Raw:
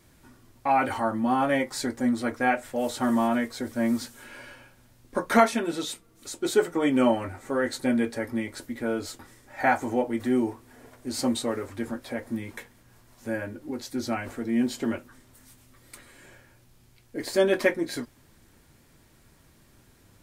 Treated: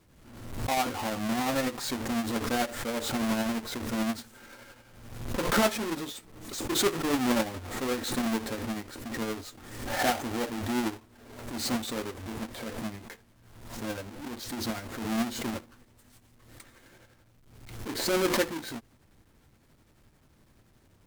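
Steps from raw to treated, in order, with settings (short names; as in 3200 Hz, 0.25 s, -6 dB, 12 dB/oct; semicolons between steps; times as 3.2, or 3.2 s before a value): half-waves squared off; tremolo triangle 12 Hz, depth 60%; varispeed -4%; backwards sustainer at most 55 dB/s; gain -7 dB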